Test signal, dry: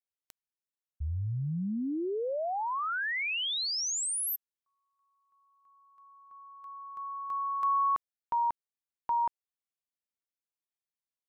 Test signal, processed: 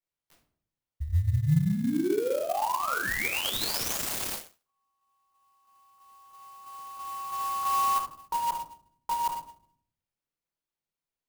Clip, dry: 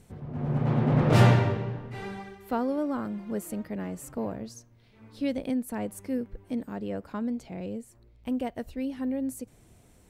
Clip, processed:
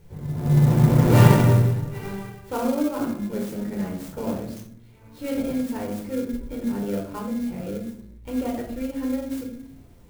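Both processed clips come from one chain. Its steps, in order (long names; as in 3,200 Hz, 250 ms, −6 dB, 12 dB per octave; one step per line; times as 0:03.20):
rectangular room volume 810 cubic metres, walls furnished, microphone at 4.5 metres
in parallel at −11.5 dB: sample-rate reduction 1,900 Hz, jitter 0%
on the sum: converter with an unsteady clock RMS 0.035 ms
level −3.5 dB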